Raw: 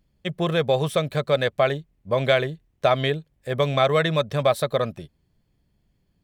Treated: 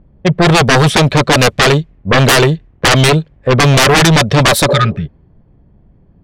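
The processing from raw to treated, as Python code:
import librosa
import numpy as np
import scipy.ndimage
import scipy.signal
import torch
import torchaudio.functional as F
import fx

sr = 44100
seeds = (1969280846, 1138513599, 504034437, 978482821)

y = fx.spec_repair(x, sr, seeds[0], start_s=4.72, length_s=0.31, low_hz=220.0, high_hz=1200.0, source='both')
y = fx.env_lowpass(y, sr, base_hz=950.0, full_db=-17.0)
y = fx.fold_sine(y, sr, drive_db=17, ceiling_db=-5.0)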